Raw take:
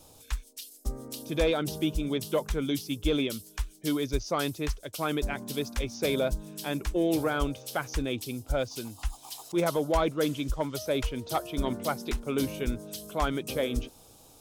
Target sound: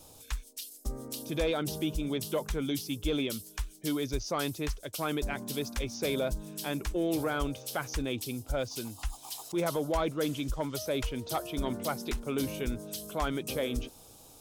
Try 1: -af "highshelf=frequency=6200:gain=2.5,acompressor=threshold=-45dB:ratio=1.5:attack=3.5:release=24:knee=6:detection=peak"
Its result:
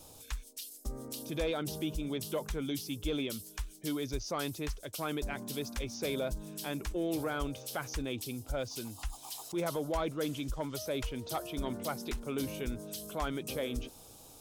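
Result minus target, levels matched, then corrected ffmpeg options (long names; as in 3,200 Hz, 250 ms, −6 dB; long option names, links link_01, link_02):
downward compressor: peak gain reduction +3.5 dB
-af "highshelf=frequency=6200:gain=2.5,acompressor=threshold=-34dB:ratio=1.5:attack=3.5:release=24:knee=6:detection=peak"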